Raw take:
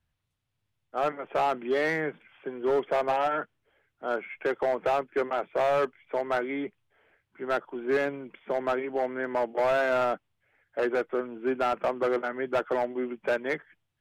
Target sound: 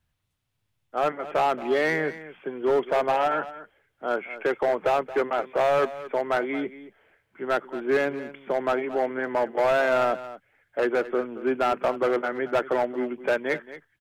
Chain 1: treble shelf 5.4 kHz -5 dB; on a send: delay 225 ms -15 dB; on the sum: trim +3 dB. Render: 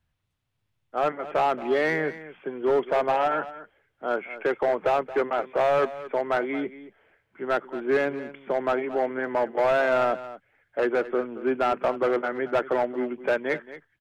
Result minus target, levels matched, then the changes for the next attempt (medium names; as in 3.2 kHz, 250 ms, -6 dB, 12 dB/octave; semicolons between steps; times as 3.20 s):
8 kHz band -4.5 dB
change: treble shelf 5.4 kHz +2.5 dB